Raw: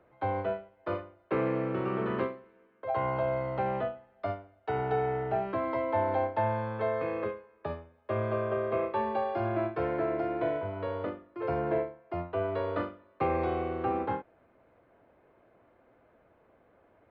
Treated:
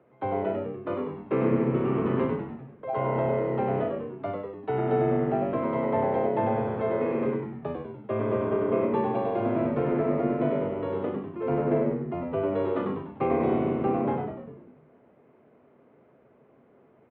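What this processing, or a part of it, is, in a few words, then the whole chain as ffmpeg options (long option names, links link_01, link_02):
frequency-shifting delay pedal into a guitar cabinet: -filter_complex "[0:a]asplit=9[link_01][link_02][link_03][link_04][link_05][link_06][link_07][link_08][link_09];[link_02]adelay=98,afreqshift=-97,volume=-4dB[link_10];[link_03]adelay=196,afreqshift=-194,volume=-9dB[link_11];[link_04]adelay=294,afreqshift=-291,volume=-14.1dB[link_12];[link_05]adelay=392,afreqshift=-388,volume=-19.1dB[link_13];[link_06]adelay=490,afreqshift=-485,volume=-24.1dB[link_14];[link_07]adelay=588,afreqshift=-582,volume=-29.2dB[link_15];[link_08]adelay=686,afreqshift=-679,volume=-34.2dB[link_16];[link_09]adelay=784,afreqshift=-776,volume=-39.3dB[link_17];[link_01][link_10][link_11][link_12][link_13][link_14][link_15][link_16][link_17]amix=inputs=9:normalize=0,highpass=110,equalizer=frequency=140:width_type=q:width=4:gain=9,equalizer=frequency=240:width_type=q:width=4:gain=8,equalizer=frequency=410:width_type=q:width=4:gain=6,equalizer=frequency=1600:width_type=q:width=4:gain=-4,lowpass=frequency=3500:width=0.5412,lowpass=frequency=3500:width=1.3066"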